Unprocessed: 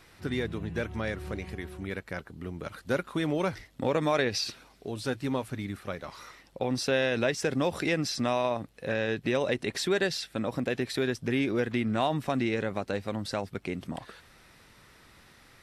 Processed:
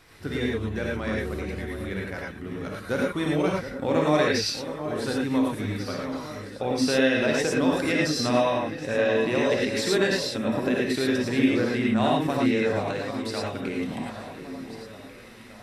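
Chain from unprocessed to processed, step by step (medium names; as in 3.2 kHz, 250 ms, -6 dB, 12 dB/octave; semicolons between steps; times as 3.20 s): 12.90–13.44 s: bass shelf 430 Hz -10.5 dB; echo whose repeats swap between lows and highs 721 ms, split 1.6 kHz, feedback 64%, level -10.5 dB; gated-style reverb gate 130 ms rising, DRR -2.5 dB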